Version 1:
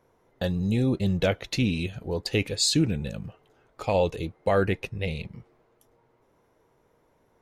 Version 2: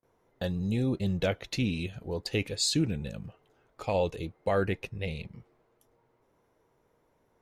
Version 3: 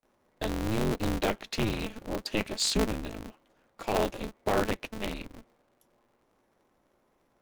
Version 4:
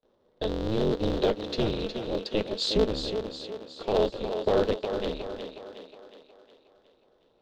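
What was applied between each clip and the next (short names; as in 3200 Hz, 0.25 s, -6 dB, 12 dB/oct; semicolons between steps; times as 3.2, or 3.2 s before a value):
gate with hold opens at -58 dBFS; gain -4.5 dB
HPF 68 Hz 24 dB/oct; polarity switched at an audio rate 110 Hz
EQ curve 300 Hz 0 dB, 470 Hz +9 dB, 710 Hz -1 dB, 1600 Hz -5 dB, 2300 Hz -9 dB, 3600 Hz +5 dB, 10000 Hz -21 dB; on a send: thinning echo 0.364 s, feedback 52%, high-pass 200 Hz, level -7 dB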